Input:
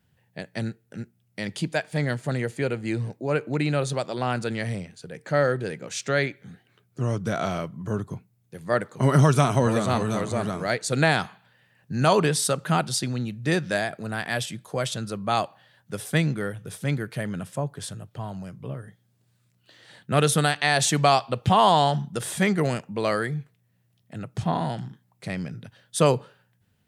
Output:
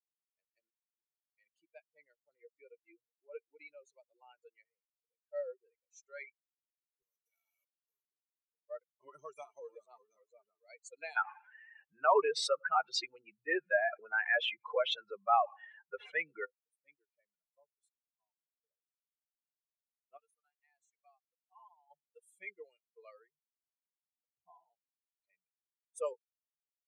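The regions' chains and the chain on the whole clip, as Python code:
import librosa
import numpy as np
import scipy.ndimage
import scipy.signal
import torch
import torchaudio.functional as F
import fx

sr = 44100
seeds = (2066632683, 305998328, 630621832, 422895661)

y = fx.chain(x, sr, fx.block_float(bits=5),
    fx.level_steps(step_db=10),
    fx.spectral_comp(ratio=2.0), at=(7.02, 8.07))
y = fx.chain(y, sr, fx.lowpass(hz=2100.0, slope=12),
    fx.peak_eq(hz=1500.0, db=6.5, octaves=2.5),
    fx.env_flatten(amount_pct=70), at=(11.16, 16.45))
y = fx.chain(y, sr, fx.bandpass_q(hz=2900.0, q=0.77),
    fx.peak_eq(hz=3300.0, db=-14.0, octaves=2.2), at=(20.17, 21.91))
y = fx.bin_expand(y, sr, power=3.0)
y = scipy.signal.sosfilt(scipy.signal.ellip(4, 1.0, 40, 390.0, 'highpass', fs=sr, output='sos'), y)
y = fx.env_lowpass(y, sr, base_hz=2900.0, full_db=-25.5)
y = F.gain(torch.from_numpy(y), -7.0).numpy()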